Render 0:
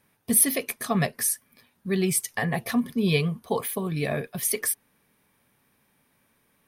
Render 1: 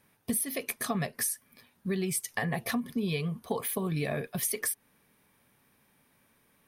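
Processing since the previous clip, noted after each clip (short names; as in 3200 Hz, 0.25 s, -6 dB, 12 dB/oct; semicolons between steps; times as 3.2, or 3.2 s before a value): compressor 16:1, threshold -27 dBFS, peak gain reduction 14 dB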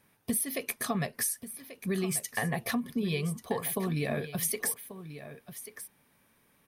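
echo 1.137 s -13 dB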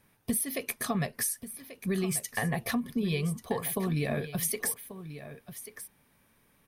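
low shelf 73 Hz +10.5 dB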